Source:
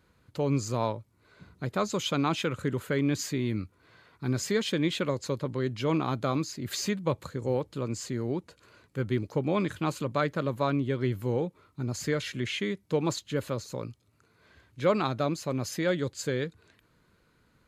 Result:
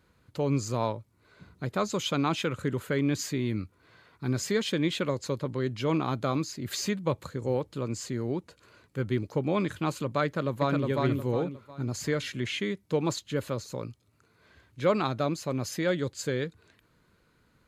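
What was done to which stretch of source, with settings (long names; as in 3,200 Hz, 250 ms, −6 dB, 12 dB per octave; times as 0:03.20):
0:10.25–0:10.84: delay throw 360 ms, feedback 35%, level −2.5 dB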